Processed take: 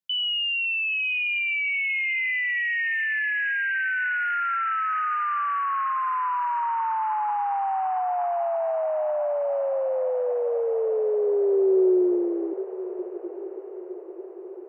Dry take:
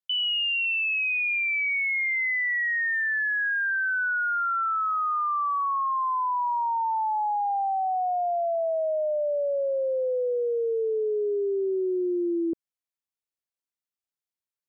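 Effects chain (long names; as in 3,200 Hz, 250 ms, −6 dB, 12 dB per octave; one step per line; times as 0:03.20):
high-pass filter sweep 150 Hz → 1,400 Hz, 0:10.42–0:14.12
feedback delay with all-pass diffusion 991 ms, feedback 60%, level −13 dB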